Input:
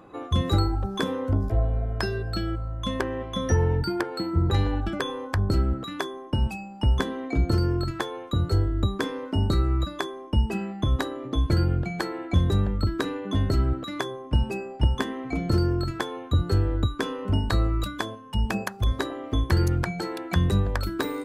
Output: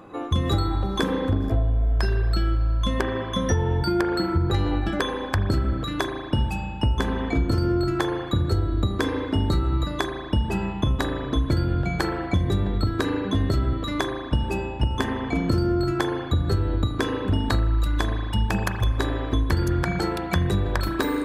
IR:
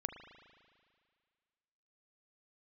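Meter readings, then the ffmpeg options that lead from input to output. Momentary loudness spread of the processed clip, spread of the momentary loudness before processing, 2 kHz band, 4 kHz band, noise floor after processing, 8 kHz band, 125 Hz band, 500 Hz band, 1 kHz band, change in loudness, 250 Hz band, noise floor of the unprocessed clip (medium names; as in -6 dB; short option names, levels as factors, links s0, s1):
3 LU, 7 LU, +3.5 dB, +2.0 dB, -32 dBFS, +2.5 dB, +1.0 dB, +2.5 dB, +3.5 dB, +2.0 dB, +3.0 dB, -40 dBFS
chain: -filter_complex "[1:a]atrim=start_sample=2205[s0];[0:a][s0]afir=irnorm=-1:irlink=0,acompressor=threshold=0.0631:ratio=6,volume=2"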